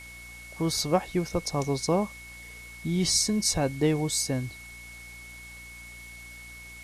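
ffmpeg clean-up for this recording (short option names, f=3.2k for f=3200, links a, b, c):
-af "bandreject=f=59.1:t=h:w=4,bandreject=f=118.2:t=h:w=4,bandreject=f=177.3:t=h:w=4,bandreject=f=236.4:t=h:w=4,bandreject=f=295.5:t=h:w=4,bandreject=f=2.2k:w=30,afwtdn=0.0032"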